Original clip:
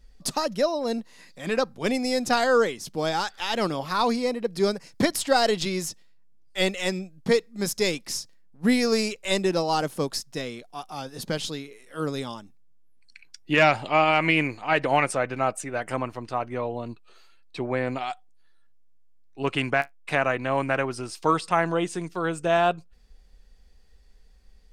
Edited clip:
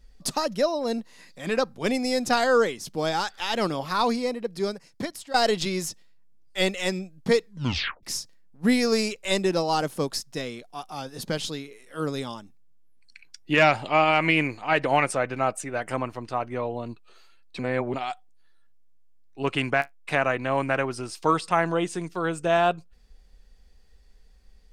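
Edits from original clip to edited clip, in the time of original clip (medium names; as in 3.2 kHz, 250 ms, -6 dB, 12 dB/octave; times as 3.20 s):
4.01–5.34 s: fade out, to -16.5 dB
7.45 s: tape stop 0.58 s
17.59–17.94 s: reverse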